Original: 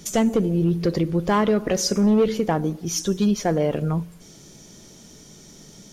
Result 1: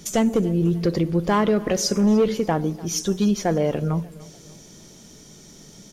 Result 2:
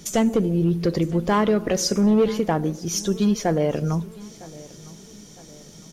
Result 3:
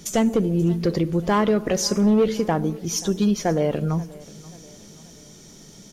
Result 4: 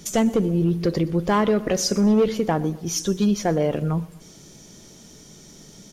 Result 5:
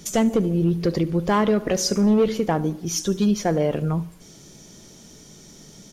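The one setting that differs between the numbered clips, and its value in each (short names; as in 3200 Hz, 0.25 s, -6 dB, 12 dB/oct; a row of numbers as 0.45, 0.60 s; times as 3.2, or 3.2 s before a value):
feedback echo, time: 295, 959, 533, 122, 72 ms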